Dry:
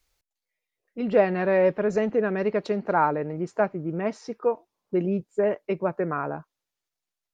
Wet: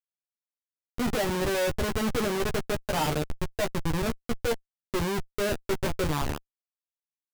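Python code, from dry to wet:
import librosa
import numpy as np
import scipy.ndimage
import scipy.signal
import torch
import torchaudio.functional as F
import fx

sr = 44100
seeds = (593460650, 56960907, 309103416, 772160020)

y = fx.wiener(x, sr, points=15)
y = fx.peak_eq(y, sr, hz=230.0, db=-12.0, octaves=0.77, at=(2.64, 3.47))
y = fx.hum_notches(y, sr, base_hz=60, count=7, at=(5.56, 6.12))
y = fx.schmitt(y, sr, flips_db=-26.5)
y = fx.doubler(y, sr, ms=13.0, db=-5)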